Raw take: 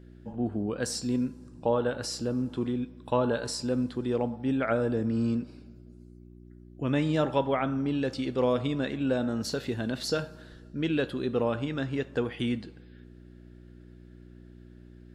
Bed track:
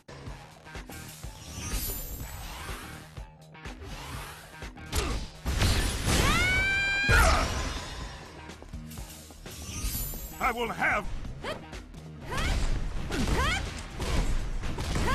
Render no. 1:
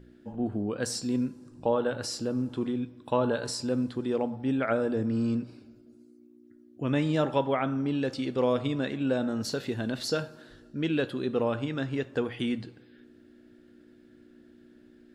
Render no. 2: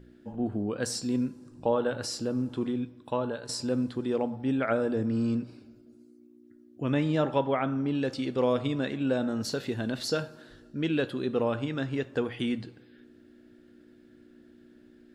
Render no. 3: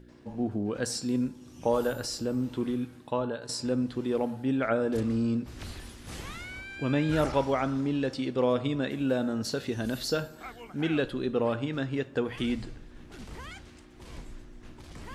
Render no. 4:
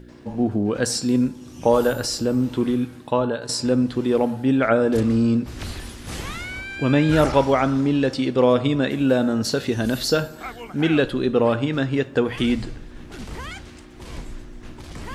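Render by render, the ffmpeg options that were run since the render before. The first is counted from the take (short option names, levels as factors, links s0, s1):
-af "bandreject=f=60:t=h:w=4,bandreject=f=120:t=h:w=4,bandreject=f=180:t=h:w=4"
-filter_complex "[0:a]asettb=1/sr,asplit=3[s0][s1][s2];[s0]atrim=end=6.944[s3];[s1]atrim=start=6.94:end=7.95,asetpts=PTS-STARTPTS,afade=t=in:d=0.004:c=qsin,afade=t=out:st=1.006:d=0.004:c=qsin,highshelf=f=5900:g=-8[s4];[s2]atrim=start=7.946[s5];[s3][s4]acrossfade=d=0.004:c1=hsin:c2=qsin[s6];[s6][s5]acrossfade=d=0.004:c1=qsin:c2=hsin,asplit=2[s7][s8];[s7]atrim=end=3.49,asetpts=PTS-STARTPTS,afade=t=out:st=2.81:d=0.68:silence=0.334965[s9];[s8]atrim=start=3.49,asetpts=PTS-STARTPTS,afade=t=in:d=0.004:c=hsin:silence=0.334965[s10];[s9][s10]concat=n=2:v=0:a=1"
-filter_complex "[1:a]volume=0.158[s0];[0:a][s0]amix=inputs=2:normalize=0"
-af "volume=2.82"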